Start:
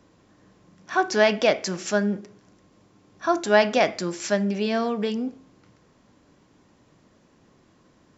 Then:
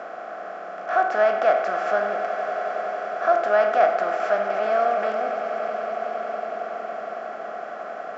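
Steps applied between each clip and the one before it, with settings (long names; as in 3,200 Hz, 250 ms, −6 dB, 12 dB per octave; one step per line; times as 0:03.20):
compressor on every frequency bin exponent 0.4
pair of resonant band-passes 950 Hz, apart 0.8 octaves
echo that builds up and dies away 92 ms, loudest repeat 8, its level −16 dB
level +3.5 dB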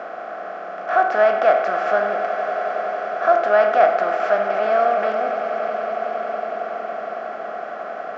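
low-pass filter 5,300 Hz 12 dB per octave
level +3.5 dB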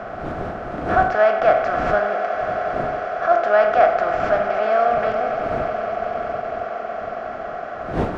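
wind on the microphone 470 Hz −33 dBFS
level that may rise only so fast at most 200 dB per second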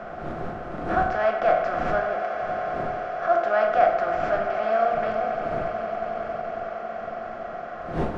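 rectangular room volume 240 cubic metres, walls furnished, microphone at 0.88 metres
level −6 dB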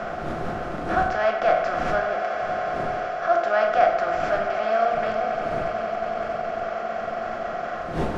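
high-shelf EQ 3,300 Hz +10 dB
reversed playback
upward compression, threshold −22 dBFS
reversed playback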